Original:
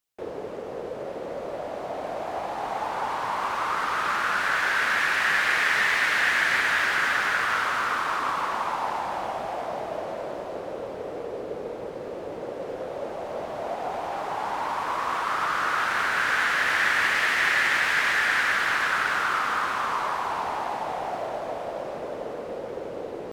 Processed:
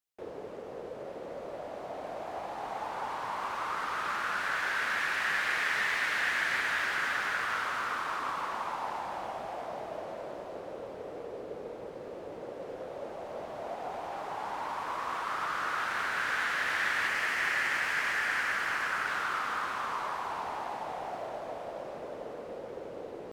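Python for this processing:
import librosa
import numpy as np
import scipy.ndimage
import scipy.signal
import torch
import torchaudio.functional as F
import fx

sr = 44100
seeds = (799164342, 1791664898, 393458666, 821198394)

y = fx.peak_eq(x, sr, hz=3700.0, db=-5.5, octaves=0.32, at=(17.08, 19.08))
y = y * librosa.db_to_amplitude(-7.5)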